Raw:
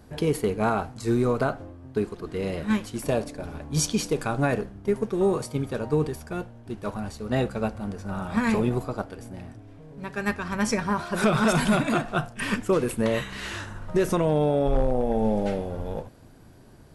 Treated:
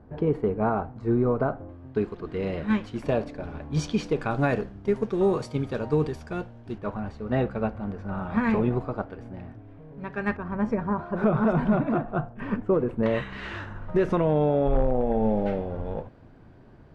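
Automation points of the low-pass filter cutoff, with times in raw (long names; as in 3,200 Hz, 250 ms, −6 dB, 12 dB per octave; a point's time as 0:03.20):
1,200 Hz
from 0:01.69 3,000 Hz
from 0:04.31 4,900 Hz
from 0:06.78 2,200 Hz
from 0:10.37 1,000 Hz
from 0:13.03 2,400 Hz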